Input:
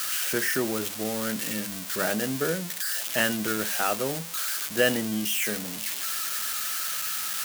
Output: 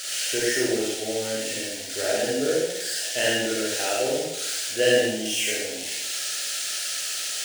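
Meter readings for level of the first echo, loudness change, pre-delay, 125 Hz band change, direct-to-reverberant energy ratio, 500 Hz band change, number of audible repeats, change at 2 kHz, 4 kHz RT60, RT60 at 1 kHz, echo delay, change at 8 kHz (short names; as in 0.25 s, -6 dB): none, +2.0 dB, 36 ms, -3.5 dB, -5.0 dB, +6.0 dB, none, +1.0 dB, 0.80 s, 0.85 s, none, +3.5 dB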